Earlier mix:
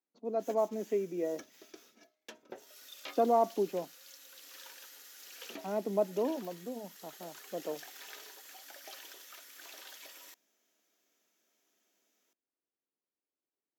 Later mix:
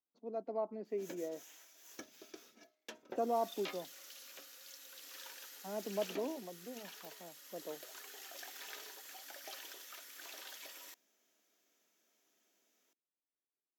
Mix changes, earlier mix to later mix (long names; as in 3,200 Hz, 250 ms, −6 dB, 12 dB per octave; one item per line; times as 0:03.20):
speech −7.5 dB
background: entry +0.60 s